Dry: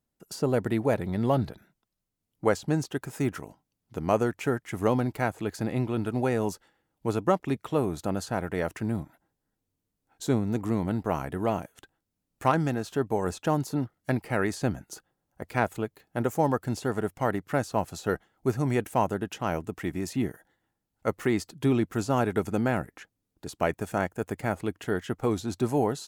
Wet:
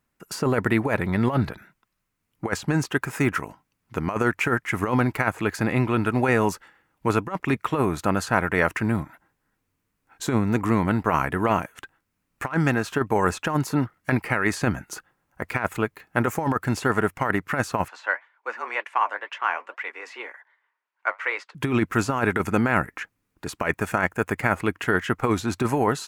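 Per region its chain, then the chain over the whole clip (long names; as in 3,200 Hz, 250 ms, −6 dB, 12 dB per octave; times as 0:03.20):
0:17.88–0:21.55: band-pass filter 700–3,400 Hz + flanger 2 Hz, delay 1.3 ms, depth 9.7 ms, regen −65% + frequency shifter +110 Hz
whole clip: flat-topped bell 1,600 Hz +9 dB; compressor whose output falls as the input rises −24 dBFS, ratio −0.5; level +4 dB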